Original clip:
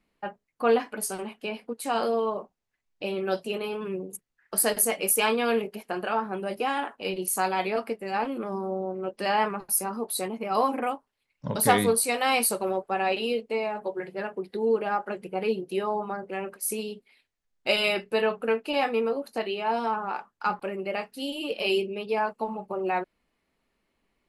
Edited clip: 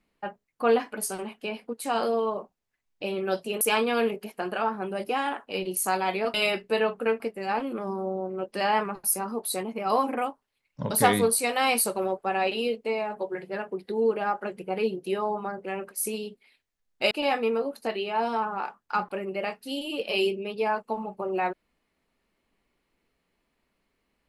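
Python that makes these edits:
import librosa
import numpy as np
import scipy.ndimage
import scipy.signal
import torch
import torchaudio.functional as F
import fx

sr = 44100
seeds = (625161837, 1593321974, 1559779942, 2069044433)

y = fx.edit(x, sr, fx.cut(start_s=3.61, length_s=1.51),
    fx.move(start_s=17.76, length_s=0.86, to_s=7.85), tone=tone)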